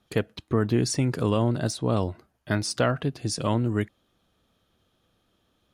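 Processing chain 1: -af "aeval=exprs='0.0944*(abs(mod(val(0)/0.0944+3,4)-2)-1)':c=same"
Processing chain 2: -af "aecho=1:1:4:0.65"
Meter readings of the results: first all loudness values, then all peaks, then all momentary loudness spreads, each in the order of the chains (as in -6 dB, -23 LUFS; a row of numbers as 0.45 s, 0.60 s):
-29.5 LUFS, -25.5 LUFS; -20.5 dBFS, -8.0 dBFS; 6 LU, 6 LU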